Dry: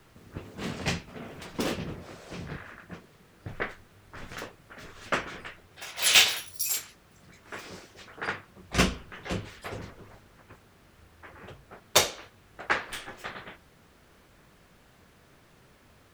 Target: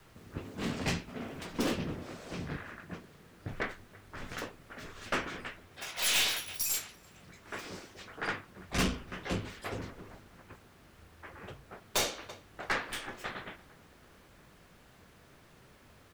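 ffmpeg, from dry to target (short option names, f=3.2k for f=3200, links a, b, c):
-filter_complex "[0:a]asplit=2[a][b];[b]adelay=333,lowpass=f=2.4k:p=1,volume=-23dB,asplit=2[c][d];[d]adelay=333,lowpass=f=2.4k:p=1,volume=0.53,asplit=2[e][f];[f]adelay=333,lowpass=f=2.4k:p=1,volume=0.53,asplit=2[g][h];[h]adelay=333,lowpass=f=2.4k:p=1,volume=0.53[i];[a][c][e][g][i]amix=inputs=5:normalize=0,aeval=exprs='(tanh(17.8*val(0)+0.25)-tanh(0.25))/17.8':c=same,adynamicequalizer=threshold=0.002:dfrequency=270:dqfactor=3.1:tfrequency=270:tqfactor=3.1:attack=5:release=100:ratio=0.375:range=2.5:mode=boostabove:tftype=bell"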